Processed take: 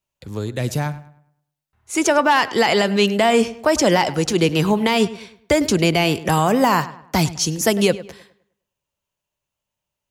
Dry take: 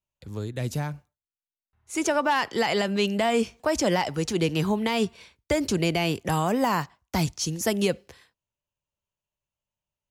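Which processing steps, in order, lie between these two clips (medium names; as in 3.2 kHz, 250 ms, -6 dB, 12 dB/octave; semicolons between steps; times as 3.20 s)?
bass shelf 110 Hz -6 dB; on a send: filtered feedback delay 103 ms, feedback 38%, low-pass 3.1 kHz, level -16 dB; on the sum: trim +8 dB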